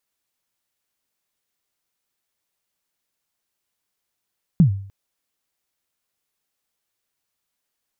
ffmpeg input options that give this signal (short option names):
-f lavfi -i "aevalsrc='0.473*pow(10,-3*t/0.53)*sin(2*PI*(190*0.103/log(98/190)*(exp(log(98/190)*min(t,0.103)/0.103)-1)+98*max(t-0.103,0)))':d=0.3:s=44100"